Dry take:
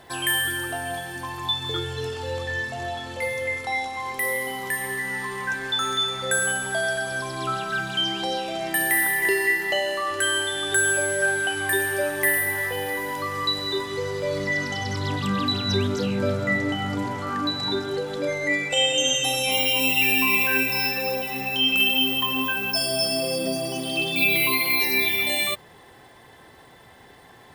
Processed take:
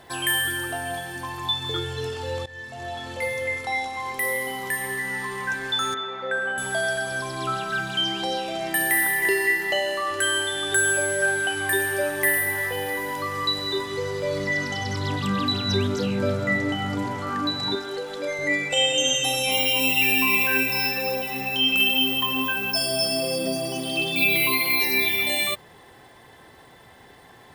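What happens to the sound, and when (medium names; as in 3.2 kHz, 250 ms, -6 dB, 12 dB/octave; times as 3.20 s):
2.46–3.08 s: fade in, from -18.5 dB
5.94–6.58 s: band-pass 270–2000 Hz
17.75–18.39 s: peaking EQ 96 Hz -14.5 dB 2.8 oct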